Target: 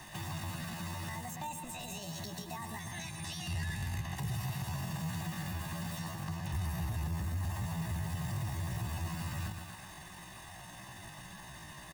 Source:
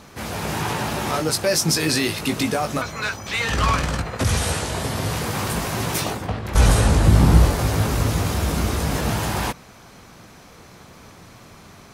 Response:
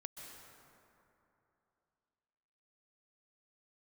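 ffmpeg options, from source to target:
-filter_complex "[0:a]acompressor=threshold=0.0447:ratio=2.5,tremolo=f=180:d=0.182,asplit=2[s0][s1];[s1]aecho=0:1:125|250|375|500|625:0.335|0.157|0.074|0.0348|0.0163[s2];[s0][s2]amix=inputs=2:normalize=0,asetrate=68011,aresample=44100,atempo=0.64842,acrossover=split=180|380|5600[s3][s4][s5][s6];[s3]acompressor=threshold=0.0224:ratio=4[s7];[s4]acompressor=threshold=0.00708:ratio=4[s8];[s5]acompressor=threshold=0.00794:ratio=4[s9];[s6]acompressor=threshold=0.00447:ratio=4[s10];[s7][s8][s9][s10]amix=inputs=4:normalize=0,equalizer=f=260:t=o:w=0.29:g=-14.5,aecho=1:1:1.1:0.84,asoftclip=type=tanh:threshold=0.075,volume=0.562"

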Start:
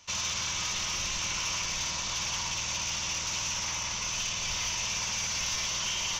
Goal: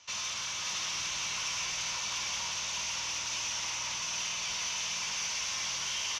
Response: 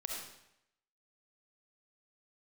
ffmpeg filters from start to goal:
-filter_complex "[0:a]highpass=52,asoftclip=type=tanh:threshold=0.0299,lowpass=7200,lowshelf=f=470:g=-9.5,asplit=2[s0][s1];[s1]adelay=19,volume=0.282[s2];[s0][s2]amix=inputs=2:normalize=0,aecho=1:1:571:0.631"

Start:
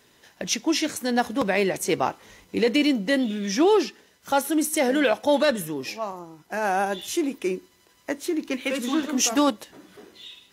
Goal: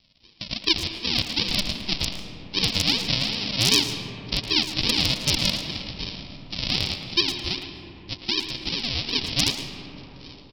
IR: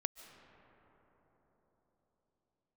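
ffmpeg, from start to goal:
-filter_complex "[0:a]aresample=11025,acrusher=samples=22:mix=1:aa=0.000001:lfo=1:lforange=13.2:lforate=2.6,aresample=44100,asplit=2[s0][s1];[s1]adelay=110,highpass=300,lowpass=3400,asoftclip=type=hard:threshold=0.141,volume=0.447[s2];[s0][s2]amix=inputs=2:normalize=0,aeval=exprs='0.251*(abs(mod(val(0)/0.251+3,4)-2)-1)':c=same[s3];[1:a]atrim=start_sample=2205[s4];[s3][s4]afir=irnorm=-1:irlink=0,aexciter=amount=13.5:drive=4:freq=2400,volume=0.422"

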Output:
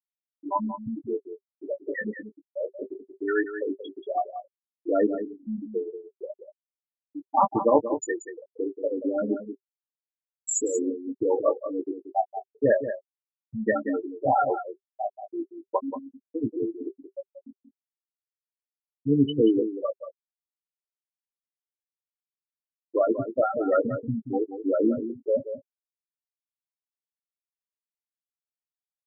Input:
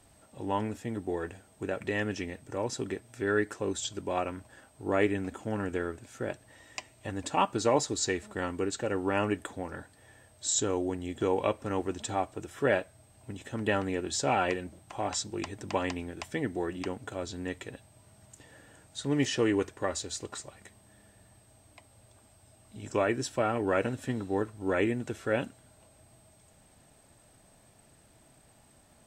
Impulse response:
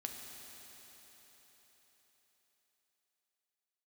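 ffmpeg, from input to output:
-filter_complex "[0:a]afftfilt=real='re*gte(hypot(re,im),0.178)':imag='im*gte(hypot(re,im),0.178)':win_size=1024:overlap=0.75,bandreject=f=390:w=12,acrossover=split=130[s0][s1];[s1]asplit=2[s2][s3];[s3]adelay=18,volume=0.355[s4];[s2][s4]amix=inputs=2:normalize=0[s5];[s0][s5]amix=inputs=2:normalize=0,aecho=1:1:182:0.299,volume=2.24"

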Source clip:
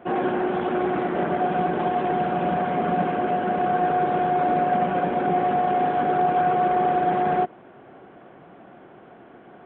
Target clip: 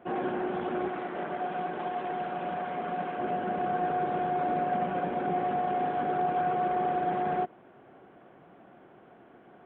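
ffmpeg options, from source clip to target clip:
-filter_complex "[0:a]asettb=1/sr,asplit=3[s0][s1][s2];[s0]atrim=end=0.884[s3];[s1]atrim=start=0.88:end=3.2,asetpts=PTS-STARTPTS,afade=t=in:d=0.004:c=qsin,afade=t=out:st=2.316:d=0.004:c=qsin,lowshelf=f=360:g=-9[s4];[s2]atrim=start=3.196[s5];[s3][s4]acrossfade=d=0.004:c1=hsin:c2=qsin[s6];[s6][s5]acrossfade=d=0.004:c1=qsin:c2=hsin,volume=0.422"

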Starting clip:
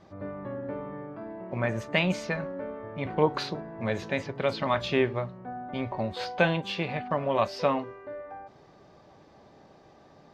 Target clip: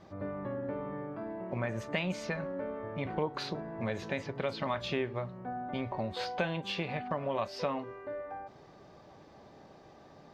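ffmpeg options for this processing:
-af "acompressor=threshold=0.0224:ratio=2.5"

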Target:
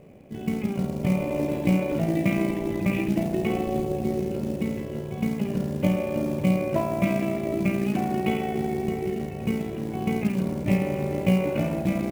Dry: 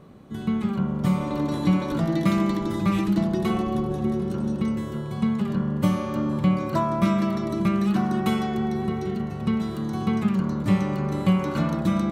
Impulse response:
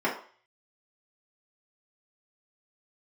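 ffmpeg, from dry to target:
-filter_complex "[0:a]firequalizer=gain_entry='entry(230,0);entry(590,7);entry(1200,-12);entry(2400,9);entry(4500,-23)':delay=0.05:min_phase=1,tremolo=f=58:d=0.519,acrusher=bits=6:mode=log:mix=0:aa=0.000001,asplit=2[s0][s1];[s1]adelay=43,volume=0.251[s2];[s0][s2]amix=inputs=2:normalize=0"

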